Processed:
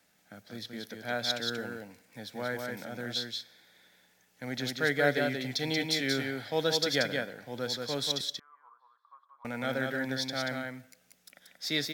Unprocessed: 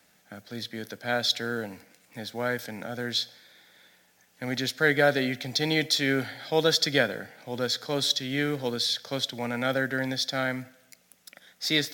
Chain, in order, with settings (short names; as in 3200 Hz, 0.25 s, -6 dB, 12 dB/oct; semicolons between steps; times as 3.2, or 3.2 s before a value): 8.21–9.45 Butterworth band-pass 1100 Hz, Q 6.1; on a send: echo 0.183 s -4 dB; on the sum: gain -6 dB